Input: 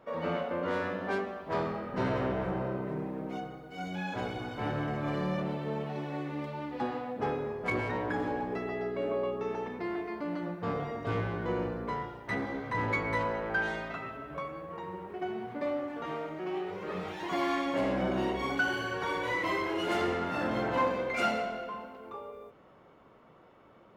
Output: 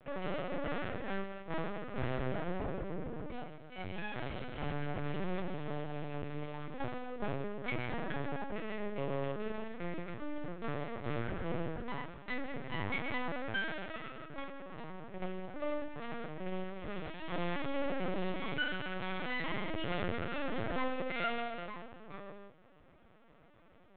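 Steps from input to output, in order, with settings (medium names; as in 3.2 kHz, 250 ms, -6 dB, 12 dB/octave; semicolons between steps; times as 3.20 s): half-wave rectifier; LPC vocoder at 8 kHz pitch kept; peaking EQ 1 kHz -4.5 dB 0.93 oct; in parallel at -2 dB: peak limiter -26 dBFS, peak gain reduction 10.5 dB; on the sum: trim -4.5 dB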